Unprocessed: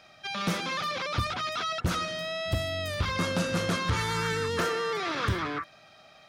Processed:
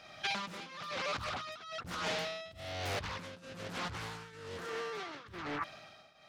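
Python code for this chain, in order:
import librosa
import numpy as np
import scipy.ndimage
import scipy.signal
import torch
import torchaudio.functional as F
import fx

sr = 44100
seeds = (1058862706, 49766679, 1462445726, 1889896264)

y = fx.over_compress(x, sr, threshold_db=-36.0, ratio=-1.0)
y = fx.tremolo_shape(y, sr, shape='triangle', hz=1.1, depth_pct=85)
y = fx.doppler_dist(y, sr, depth_ms=0.73)
y = F.gain(torch.from_numpy(y), -1.0).numpy()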